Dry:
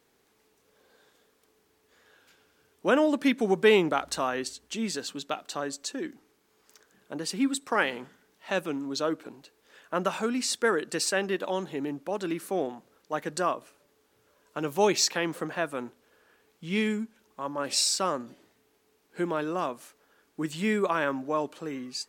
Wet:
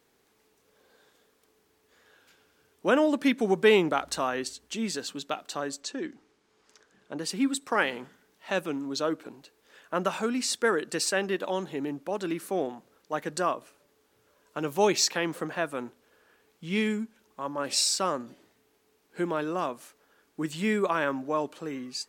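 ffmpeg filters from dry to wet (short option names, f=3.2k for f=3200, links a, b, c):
-filter_complex "[0:a]asettb=1/sr,asplit=3[a][b][c];[a]atrim=end=5.804[d];[b]atrim=start=5.8:end=7.19,asetpts=PTS-STARTPTS,afade=t=in:d=0.004:c=qsin,afade=t=out:st=1.386:d=0.004:c=qsin,lowpass=7k[e];[c]atrim=start=7.186[f];[d][e]acrossfade=d=0.004:c1=hsin:c2=qsin[g];[g][f]acrossfade=d=0.004:c1=qsin:c2=hsin"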